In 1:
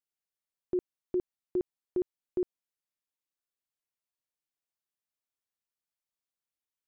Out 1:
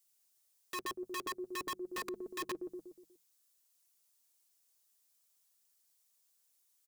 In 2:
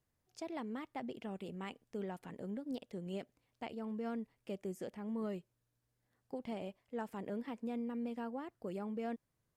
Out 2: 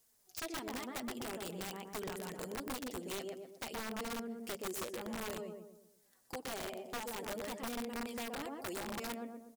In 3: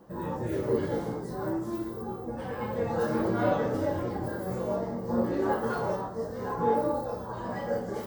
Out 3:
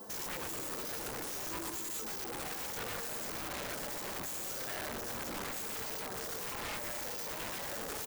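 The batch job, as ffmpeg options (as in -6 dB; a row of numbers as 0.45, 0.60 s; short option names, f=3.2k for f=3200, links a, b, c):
-filter_complex "[0:a]asplit=2[a][b];[b]volume=27dB,asoftclip=hard,volume=-27dB,volume=-10dB[c];[a][c]amix=inputs=2:normalize=0,bass=f=250:g=-9,treble=f=4k:g=15,alimiter=limit=-24dB:level=0:latency=1:release=16,flanger=delay=4.5:depth=3.9:regen=27:speed=0.51:shape=sinusoidal,bandreject=f=50:t=h:w=6,bandreject=f=100:t=h:w=6,bandreject=f=150:t=h:w=6,bandreject=f=200:t=h:w=6,asplit=2[d][e];[e]adelay=121,lowpass=f=1.4k:p=1,volume=-4dB,asplit=2[f][g];[g]adelay=121,lowpass=f=1.4k:p=1,volume=0.45,asplit=2[h][i];[i]adelay=121,lowpass=f=1.4k:p=1,volume=0.45,asplit=2[j][k];[k]adelay=121,lowpass=f=1.4k:p=1,volume=0.45,asplit=2[l][m];[m]adelay=121,lowpass=f=1.4k:p=1,volume=0.45,asplit=2[n][o];[o]adelay=121,lowpass=f=1.4k:p=1,volume=0.45[p];[f][h][j][l][n][p]amix=inputs=6:normalize=0[q];[d][q]amix=inputs=2:normalize=0,acompressor=threshold=-45dB:ratio=4,aeval=exprs='(mod(119*val(0)+1,2)-1)/119':c=same,volume=7dB"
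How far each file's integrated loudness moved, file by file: -5.5, +1.5, -7.0 LU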